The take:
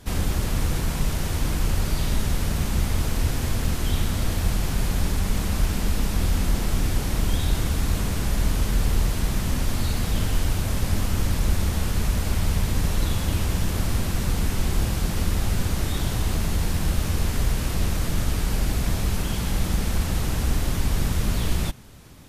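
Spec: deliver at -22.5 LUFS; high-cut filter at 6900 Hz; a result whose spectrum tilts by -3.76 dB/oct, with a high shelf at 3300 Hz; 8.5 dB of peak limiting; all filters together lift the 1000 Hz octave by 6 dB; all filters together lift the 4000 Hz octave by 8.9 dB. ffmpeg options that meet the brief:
-af "lowpass=6.9k,equalizer=f=1k:t=o:g=6.5,highshelf=f=3.3k:g=6,equalizer=f=4k:t=o:g=7,volume=4dB,alimiter=limit=-12dB:level=0:latency=1"

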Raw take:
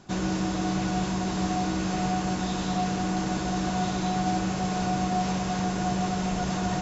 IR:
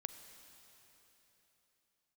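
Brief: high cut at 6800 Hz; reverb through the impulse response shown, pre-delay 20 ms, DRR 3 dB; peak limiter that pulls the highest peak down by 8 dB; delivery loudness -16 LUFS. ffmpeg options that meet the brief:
-filter_complex "[0:a]lowpass=6.8k,alimiter=limit=-23dB:level=0:latency=1,asplit=2[a][b];[1:a]atrim=start_sample=2205,adelay=20[c];[b][c]afir=irnorm=-1:irlink=0,volume=-0.5dB[d];[a][d]amix=inputs=2:normalize=0,volume=14.5dB"

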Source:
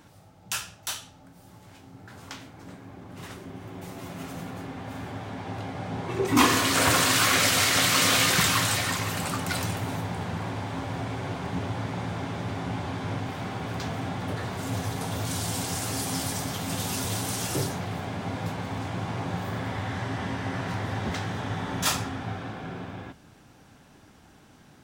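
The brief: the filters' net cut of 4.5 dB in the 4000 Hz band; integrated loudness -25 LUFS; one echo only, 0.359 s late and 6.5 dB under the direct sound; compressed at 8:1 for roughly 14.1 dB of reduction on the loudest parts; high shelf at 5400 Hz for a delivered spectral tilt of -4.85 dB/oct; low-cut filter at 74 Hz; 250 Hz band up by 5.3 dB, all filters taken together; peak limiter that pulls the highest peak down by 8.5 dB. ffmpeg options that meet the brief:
-af "highpass=74,equalizer=f=250:t=o:g=6.5,equalizer=f=4k:t=o:g=-7.5,highshelf=f=5.4k:g=3.5,acompressor=threshold=-26dB:ratio=8,alimiter=level_in=0.5dB:limit=-24dB:level=0:latency=1,volume=-0.5dB,aecho=1:1:359:0.473,volume=8dB"

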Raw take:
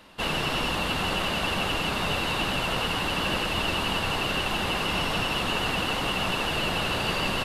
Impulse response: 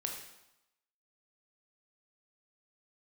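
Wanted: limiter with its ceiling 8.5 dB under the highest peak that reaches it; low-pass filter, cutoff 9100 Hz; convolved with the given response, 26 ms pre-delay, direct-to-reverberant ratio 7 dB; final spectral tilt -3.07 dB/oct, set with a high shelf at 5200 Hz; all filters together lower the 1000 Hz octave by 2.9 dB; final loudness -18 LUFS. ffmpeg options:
-filter_complex "[0:a]lowpass=9.1k,equalizer=f=1k:t=o:g=-4,highshelf=f=5.2k:g=6.5,alimiter=limit=-21.5dB:level=0:latency=1,asplit=2[a][b];[1:a]atrim=start_sample=2205,adelay=26[c];[b][c]afir=irnorm=-1:irlink=0,volume=-7.5dB[d];[a][d]amix=inputs=2:normalize=0,volume=10.5dB"

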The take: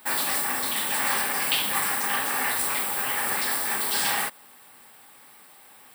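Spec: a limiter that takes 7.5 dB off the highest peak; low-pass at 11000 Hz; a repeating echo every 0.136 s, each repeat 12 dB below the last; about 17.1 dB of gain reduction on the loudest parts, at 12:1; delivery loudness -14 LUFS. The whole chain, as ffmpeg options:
-af "lowpass=11k,acompressor=threshold=-39dB:ratio=12,alimiter=level_in=9.5dB:limit=-24dB:level=0:latency=1,volume=-9.5dB,aecho=1:1:136|272|408:0.251|0.0628|0.0157,volume=28.5dB"

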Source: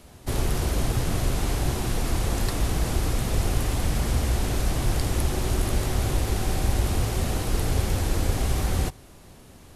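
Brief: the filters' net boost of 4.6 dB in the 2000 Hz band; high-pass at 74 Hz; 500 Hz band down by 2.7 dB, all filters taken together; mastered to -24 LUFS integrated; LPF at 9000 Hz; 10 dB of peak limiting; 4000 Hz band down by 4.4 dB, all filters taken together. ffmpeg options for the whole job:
-af "highpass=74,lowpass=9k,equalizer=f=500:t=o:g=-4,equalizer=f=2k:t=o:g=8,equalizer=f=4k:t=o:g=-8.5,volume=9dB,alimiter=limit=-14.5dB:level=0:latency=1"

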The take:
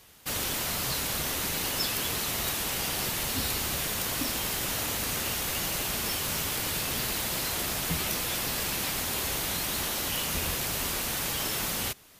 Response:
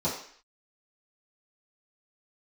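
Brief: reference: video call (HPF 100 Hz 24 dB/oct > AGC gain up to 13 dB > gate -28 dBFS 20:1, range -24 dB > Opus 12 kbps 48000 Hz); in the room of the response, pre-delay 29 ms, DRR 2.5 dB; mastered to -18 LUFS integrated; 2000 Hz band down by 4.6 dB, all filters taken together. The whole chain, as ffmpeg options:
-filter_complex "[0:a]equalizer=f=2k:t=o:g=-6,asplit=2[a][b];[1:a]atrim=start_sample=2205,adelay=29[c];[b][c]afir=irnorm=-1:irlink=0,volume=-12dB[d];[a][d]amix=inputs=2:normalize=0,highpass=f=100:w=0.5412,highpass=f=100:w=1.3066,dynaudnorm=m=13dB,agate=range=-24dB:threshold=-28dB:ratio=20,volume=13dB" -ar 48000 -c:a libopus -b:a 12k

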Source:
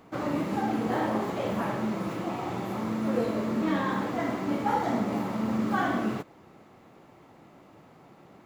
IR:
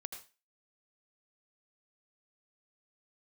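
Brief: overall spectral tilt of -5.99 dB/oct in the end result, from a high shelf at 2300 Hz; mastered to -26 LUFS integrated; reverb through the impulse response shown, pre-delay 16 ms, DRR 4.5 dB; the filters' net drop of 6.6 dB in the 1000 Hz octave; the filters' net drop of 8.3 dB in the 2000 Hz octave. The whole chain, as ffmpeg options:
-filter_complex "[0:a]equalizer=f=1k:t=o:g=-6.5,equalizer=f=2k:t=o:g=-4.5,highshelf=f=2.3k:g=-8,asplit=2[a][b];[1:a]atrim=start_sample=2205,adelay=16[c];[b][c]afir=irnorm=-1:irlink=0,volume=-2dB[d];[a][d]amix=inputs=2:normalize=0,volume=4.5dB"

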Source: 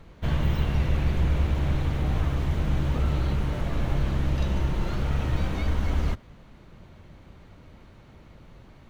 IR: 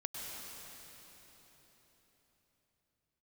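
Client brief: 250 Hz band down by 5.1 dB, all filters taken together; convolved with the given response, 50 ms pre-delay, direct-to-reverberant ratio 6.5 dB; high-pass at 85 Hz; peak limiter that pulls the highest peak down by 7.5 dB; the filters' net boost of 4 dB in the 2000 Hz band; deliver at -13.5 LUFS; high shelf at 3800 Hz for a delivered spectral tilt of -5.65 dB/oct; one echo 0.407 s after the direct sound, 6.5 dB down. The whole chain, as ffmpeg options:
-filter_complex "[0:a]highpass=85,equalizer=f=250:t=o:g=-8.5,equalizer=f=2k:t=o:g=4,highshelf=f=3.8k:g=4,alimiter=level_in=0.5dB:limit=-24dB:level=0:latency=1,volume=-0.5dB,aecho=1:1:407:0.473,asplit=2[a][b];[1:a]atrim=start_sample=2205,adelay=50[c];[b][c]afir=irnorm=-1:irlink=0,volume=-7.5dB[d];[a][d]amix=inputs=2:normalize=0,volume=19.5dB"

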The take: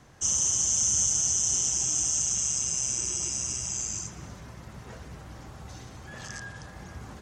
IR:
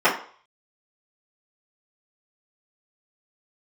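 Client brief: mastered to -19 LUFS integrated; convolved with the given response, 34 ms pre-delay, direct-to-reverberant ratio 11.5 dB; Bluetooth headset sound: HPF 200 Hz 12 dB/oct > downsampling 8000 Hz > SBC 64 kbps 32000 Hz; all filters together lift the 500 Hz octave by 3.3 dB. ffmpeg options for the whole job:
-filter_complex "[0:a]equalizer=f=500:t=o:g=4.5,asplit=2[a][b];[1:a]atrim=start_sample=2205,adelay=34[c];[b][c]afir=irnorm=-1:irlink=0,volume=-32.5dB[d];[a][d]amix=inputs=2:normalize=0,highpass=200,aresample=8000,aresample=44100,volume=25.5dB" -ar 32000 -c:a sbc -b:a 64k

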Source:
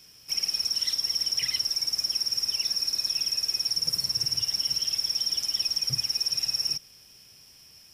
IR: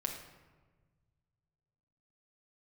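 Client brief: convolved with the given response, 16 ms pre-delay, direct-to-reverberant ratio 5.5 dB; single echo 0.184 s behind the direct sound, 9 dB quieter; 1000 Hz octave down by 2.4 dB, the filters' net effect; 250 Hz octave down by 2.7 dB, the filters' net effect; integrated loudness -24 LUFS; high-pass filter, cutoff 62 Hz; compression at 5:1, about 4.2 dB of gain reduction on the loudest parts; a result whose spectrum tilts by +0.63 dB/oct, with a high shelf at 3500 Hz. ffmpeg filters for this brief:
-filter_complex "[0:a]highpass=62,equalizer=f=250:t=o:g=-4.5,equalizer=f=1k:t=o:g=-3.5,highshelf=f=3.5k:g=6,acompressor=threshold=-23dB:ratio=5,aecho=1:1:184:0.355,asplit=2[a][b];[1:a]atrim=start_sample=2205,adelay=16[c];[b][c]afir=irnorm=-1:irlink=0,volume=-7dB[d];[a][d]amix=inputs=2:normalize=0,volume=-1dB"

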